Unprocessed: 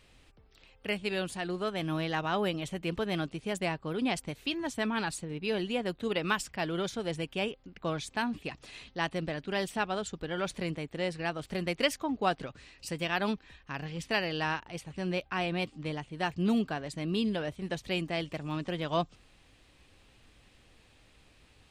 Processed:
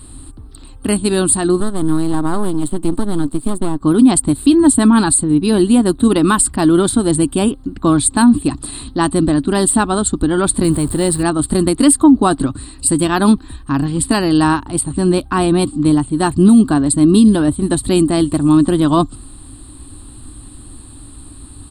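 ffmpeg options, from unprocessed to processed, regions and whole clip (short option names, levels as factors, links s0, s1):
-filter_complex "[0:a]asettb=1/sr,asplit=3[s0][s1][s2];[s0]atrim=end=1.604[s3];[s1]atrim=start=1.6:end=3.81,asetpts=PTS-STARTPTS,afade=t=in:d=0.004:c=qsin,afade=t=out:st=2.206:d=0.004:c=qsin,acrossover=split=1000|5300[s4][s5][s6];[s4]acompressor=threshold=0.0251:ratio=4[s7];[s5]acompressor=threshold=0.00562:ratio=4[s8];[s6]acompressor=threshold=0.00126:ratio=4[s9];[s7][s8][s9]amix=inputs=3:normalize=0,highpass=f=120:w=0.5412,highpass=f=120:w=1.3066,aeval=exprs='max(val(0),0)':c=same[s10];[s2]atrim=start=3.806[s11];[s3][s10]acrossfade=d=0.004:c1=hsin:c2=qsin[s12];[s12][s11]acrossfade=d=0.004:c1=qsin:c2=hsin,asettb=1/sr,asplit=3[s13][s14][s15];[s13]atrim=end=10.644[s16];[s14]atrim=start=10.64:end=11.23,asetpts=PTS-STARTPTS,afade=t=in:d=0.004:c=qsin,afade=t=out:st=0.586:d=0.004:c=qsin,aeval=exprs='val(0)+0.5*0.00596*sgn(val(0))':c=same,equalizer=f=280:t=o:w=0.32:g=-9[s17];[s15]atrim=start=11.226[s18];[s16][s17]acrossfade=d=0.004:c1=hsin:c2=qsin[s19];[s19][s18]acrossfade=d=0.004:c1=qsin:c2=hsin,firequalizer=gain_entry='entry(110,0);entry(170,-10);entry(280,5);entry(470,-18);entry(1100,-7);entry(2200,-26);entry(4200,-8);entry(6000,-27);entry(8600,13);entry(12000,-8)':delay=0.05:min_phase=1,alimiter=level_in=25.1:limit=0.891:release=50:level=0:latency=1,volume=0.891"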